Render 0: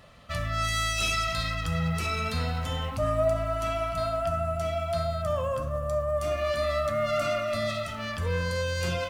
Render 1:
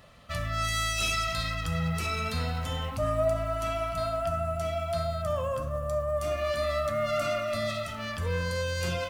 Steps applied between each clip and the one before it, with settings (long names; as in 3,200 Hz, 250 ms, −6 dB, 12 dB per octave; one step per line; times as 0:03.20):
high-shelf EQ 9,300 Hz +4 dB
level −1.5 dB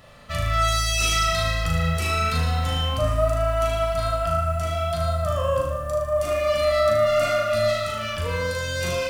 flutter between parallel walls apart 6.5 metres, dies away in 0.77 s
level +4 dB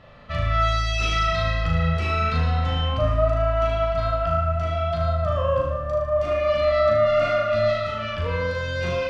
high-frequency loss of the air 220 metres
level +1.5 dB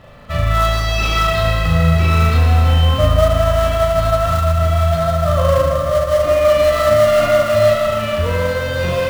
in parallel at −10 dB: sample-rate reduction 2,500 Hz, jitter 20%
on the sum: feedback echo at a low word length 159 ms, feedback 80%, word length 7 bits, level −10 dB
level +5 dB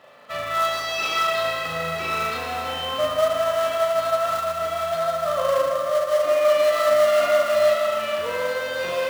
high-pass filter 420 Hz 12 dB per octave
level −4.5 dB